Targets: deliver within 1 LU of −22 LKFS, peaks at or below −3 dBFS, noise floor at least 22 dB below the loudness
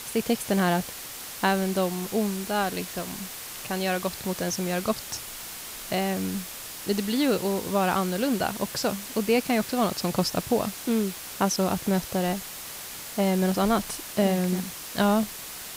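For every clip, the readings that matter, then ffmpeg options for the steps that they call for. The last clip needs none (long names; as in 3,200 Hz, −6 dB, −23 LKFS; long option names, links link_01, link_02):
background noise floor −39 dBFS; target noise floor −49 dBFS; integrated loudness −27.0 LKFS; sample peak −9.0 dBFS; target loudness −22.0 LKFS
→ -af "afftdn=noise_reduction=10:noise_floor=-39"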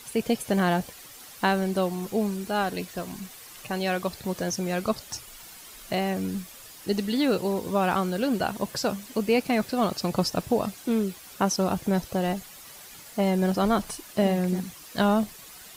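background noise floor −46 dBFS; target noise floor −49 dBFS
→ -af "afftdn=noise_reduction=6:noise_floor=-46"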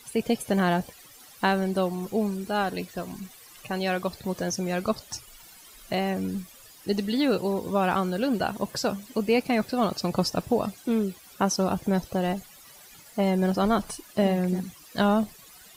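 background noise floor −51 dBFS; integrated loudness −27.0 LKFS; sample peak −9.5 dBFS; target loudness −22.0 LKFS
→ -af "volume=5dB"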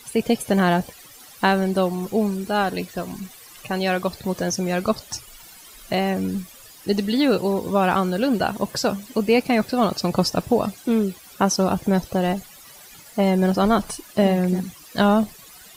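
integrated loudness −22.0 LKFS; sample peak −4.5 dBFS; background noise floor −46 dBFS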